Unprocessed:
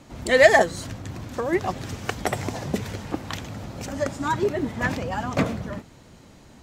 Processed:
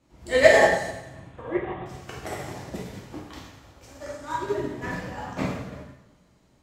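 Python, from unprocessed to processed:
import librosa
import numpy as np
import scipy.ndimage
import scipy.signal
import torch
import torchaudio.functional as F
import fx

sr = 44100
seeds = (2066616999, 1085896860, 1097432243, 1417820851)

y = fx.cheby1_lowpass(x, sr, hz=3500.0, order=6, at=(0.86, 1.86))
y = fx.peak_eq(y, sr, hz=170.0, db=-11.5, octaves=1.3, at=(3.41, 4.44))
y = fx.rev_plate(y, sr, seeds[0], rt60_s=1.3, hf_ratio=0.95, predelay_ms=0, drr_db=-6.5)
y = fx.upward_expand(y, sr, threshold_db=-32.0, expansion=1.5)
y = F.gain(torch.from_numpy(y), -6.0).numpy()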